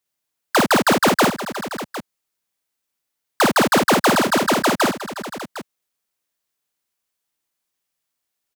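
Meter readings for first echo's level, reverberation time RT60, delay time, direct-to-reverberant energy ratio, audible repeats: -3.5 dB, none, 54 ms, none, 4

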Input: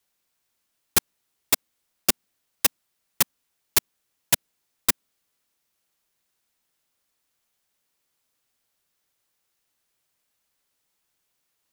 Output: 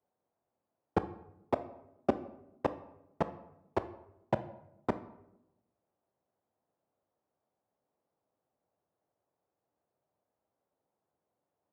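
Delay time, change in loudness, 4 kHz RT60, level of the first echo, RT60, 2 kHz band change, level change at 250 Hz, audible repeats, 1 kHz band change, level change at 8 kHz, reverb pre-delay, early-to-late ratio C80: none, -13.0 dB, 0.50 s, none, 0.90 s, -16.0 dB, +1.5 dB, none, -0.5 dB, under -40 dB, 16 ms, 17.0 dB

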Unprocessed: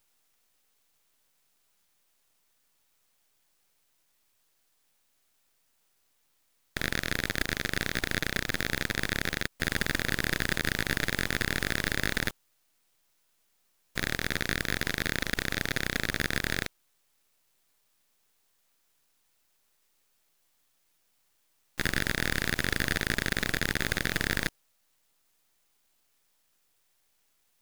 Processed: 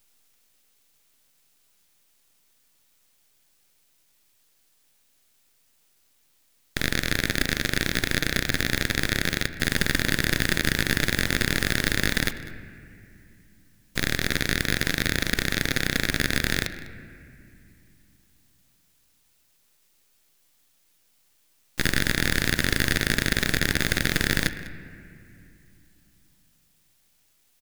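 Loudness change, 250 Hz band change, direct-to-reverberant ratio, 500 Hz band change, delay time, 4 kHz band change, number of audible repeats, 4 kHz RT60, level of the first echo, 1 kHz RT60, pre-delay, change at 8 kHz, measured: +5.5 dB, +6.5 dB, 10.5 dB, +4.5 dB, 0.2 s, +6.5 dB, 1, 1.9 s, -18.0 dB, 2.3 s, 3 ms, +7.0 dB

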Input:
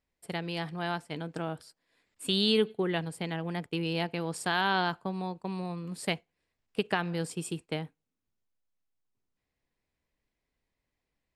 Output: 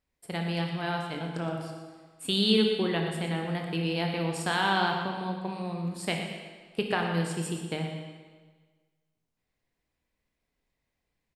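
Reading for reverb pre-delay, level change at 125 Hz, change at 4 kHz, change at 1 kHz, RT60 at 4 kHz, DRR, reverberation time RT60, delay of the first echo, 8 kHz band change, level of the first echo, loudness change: 19 ms, +4.0 dB, +2.5 dB, +2.5 dB, 1.4 s, 1.5 dB, 1.5 s, 0.118 s, +2.0 dB, -10.5 dB, +2.5 dB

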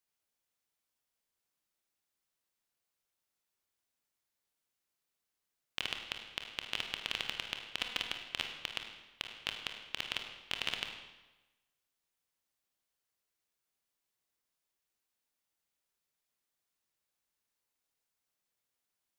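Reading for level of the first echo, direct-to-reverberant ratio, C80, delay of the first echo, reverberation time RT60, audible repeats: none, 3.5 dB, 7.0 dB, none, 1.1 s, none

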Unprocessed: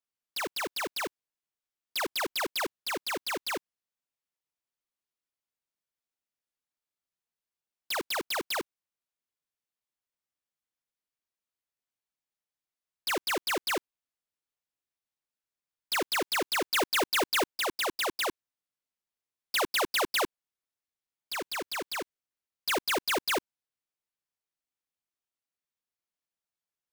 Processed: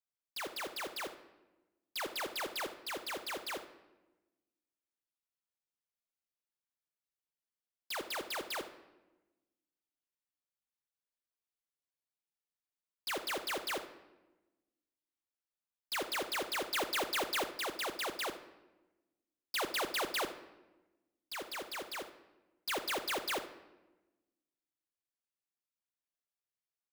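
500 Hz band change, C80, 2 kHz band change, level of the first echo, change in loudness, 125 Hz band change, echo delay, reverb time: -7.0 dB, 14.5 dB, -7.0 dB, -14.0 dB, -7.0 dB, -6.5 dB, 74 ms, 1.1 s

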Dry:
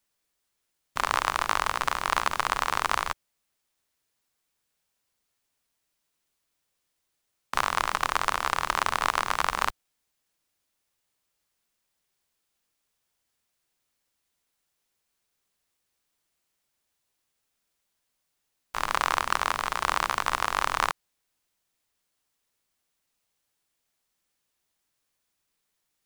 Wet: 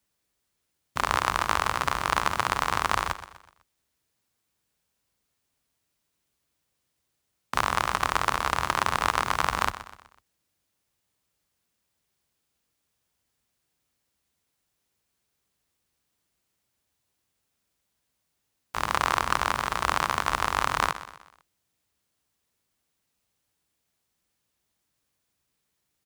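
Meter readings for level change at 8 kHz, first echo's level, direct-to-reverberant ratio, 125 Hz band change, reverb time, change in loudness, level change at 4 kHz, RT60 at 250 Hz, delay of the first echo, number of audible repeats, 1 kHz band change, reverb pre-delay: 0.0 dB, -14.0 dB, none, +7.5 dB, none, +0.5 dB, +0.5 dB, none, 0.125 s, 3, +1.0 dB, none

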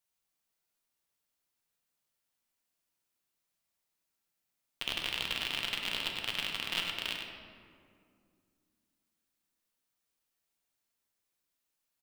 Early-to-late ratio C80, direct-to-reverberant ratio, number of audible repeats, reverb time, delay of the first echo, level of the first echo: 2.5 dB, -0.5 dB, 1, 2.2 s, 99 ms, -6.5 dB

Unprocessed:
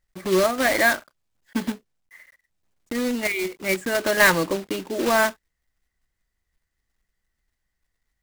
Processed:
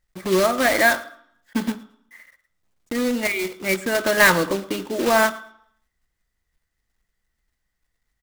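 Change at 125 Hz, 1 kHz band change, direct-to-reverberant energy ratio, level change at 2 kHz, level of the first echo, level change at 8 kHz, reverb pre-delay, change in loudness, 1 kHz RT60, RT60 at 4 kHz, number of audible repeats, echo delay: +2.0 dB, +2.5 dB, 11.0 dB, +1.5 dB, -21.5 dB, +1.5 dB, 3 ms, +2.0 dB, 0.70 s, 0.65 s, 1, 0.111 s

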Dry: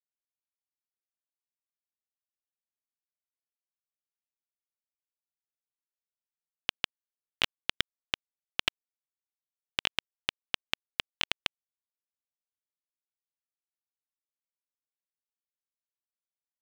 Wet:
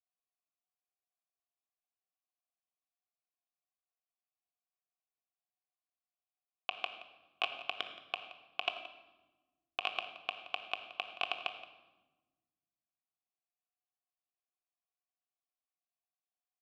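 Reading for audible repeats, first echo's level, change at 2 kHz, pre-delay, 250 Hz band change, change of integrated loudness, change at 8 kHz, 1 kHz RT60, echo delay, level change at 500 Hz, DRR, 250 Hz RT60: 1, -16.5 dB, -4.5 dB, 3 ms, -12.0 dB, -5.5 dB, under -15 dB, 1.0 s, 0.173 s, +1.0 dB, 4.5 dB, 2.0 s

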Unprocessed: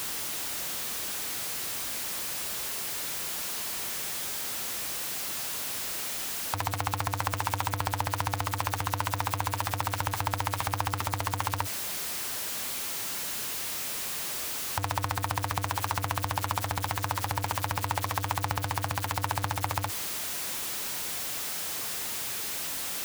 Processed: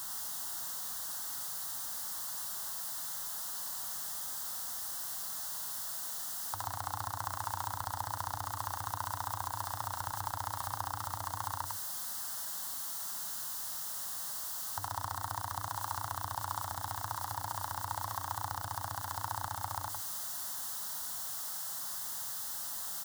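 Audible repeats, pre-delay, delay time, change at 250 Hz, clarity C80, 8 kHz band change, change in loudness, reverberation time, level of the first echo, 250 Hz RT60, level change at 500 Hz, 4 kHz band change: 1, none, 0.102 s, -15.0 dB, none, -5.5 dB, -6.5 dB, none, -4.5 dB, none, -11.5 dB, -9.5 dB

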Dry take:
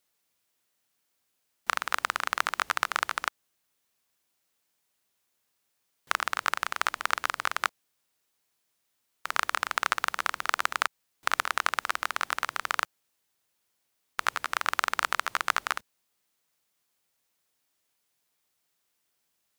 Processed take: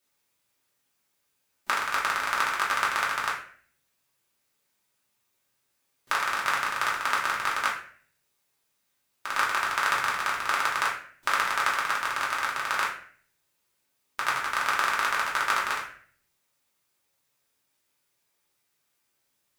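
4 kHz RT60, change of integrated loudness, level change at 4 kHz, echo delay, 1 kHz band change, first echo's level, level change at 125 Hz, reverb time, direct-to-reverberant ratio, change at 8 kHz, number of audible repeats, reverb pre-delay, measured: 0.40 s, +3.0 dB, +1.5 dB, none, +3.0 dB, none, n/a, 0.50 s, -5.5 dB, +1.5 dB, none, 3 ms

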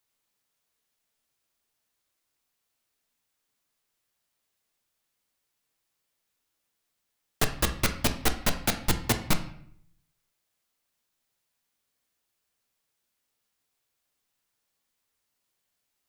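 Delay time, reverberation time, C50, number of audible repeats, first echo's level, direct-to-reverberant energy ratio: none, 0.65 s, 11.0 dB, none, none, 6.0 dB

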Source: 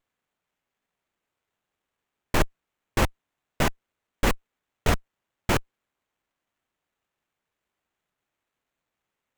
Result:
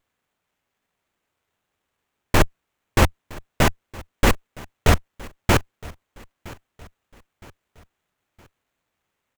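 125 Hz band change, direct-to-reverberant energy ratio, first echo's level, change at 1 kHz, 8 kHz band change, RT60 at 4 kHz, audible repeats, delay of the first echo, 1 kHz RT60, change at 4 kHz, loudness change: +8.0 dB, none, -21.5 dB, +5.5 dB, +5.5 dB, none, 2, 0.965 s, none, +5.5 dB, +6.0 dB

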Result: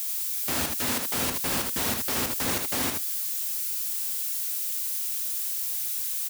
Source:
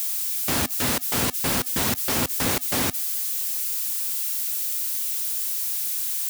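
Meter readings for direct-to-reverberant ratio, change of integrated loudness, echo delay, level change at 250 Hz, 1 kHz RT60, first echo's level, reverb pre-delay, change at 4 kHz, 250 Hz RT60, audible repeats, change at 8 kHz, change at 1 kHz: none, -3.5 dB, 78 ms, -5.0 dB, none, -4.5 dB, none, -3.0 dB, none, 1, -3.0 dB, -3.5 dB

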